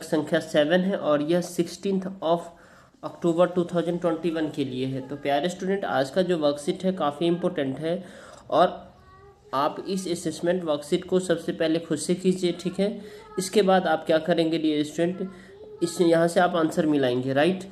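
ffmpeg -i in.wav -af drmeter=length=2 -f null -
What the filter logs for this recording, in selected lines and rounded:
Channel 1: DR: 12.0
Overall DR: 12.0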